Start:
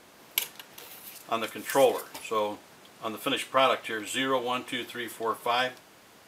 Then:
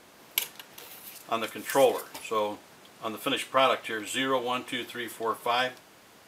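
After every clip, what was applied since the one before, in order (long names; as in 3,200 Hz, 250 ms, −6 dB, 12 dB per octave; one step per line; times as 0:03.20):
no processing that can be heard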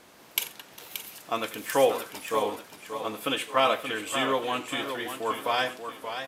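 single-tap delay 89 ms −17.5 dB
feedback echo with a swinging delay time 581 ms, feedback 41%, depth 94 cents, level −8.5 dB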